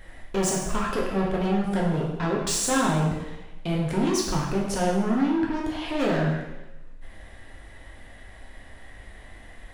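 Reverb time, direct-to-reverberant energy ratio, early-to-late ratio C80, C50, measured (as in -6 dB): 1.0 s, -3.5 dB, 5.0 dB, 2.0 dB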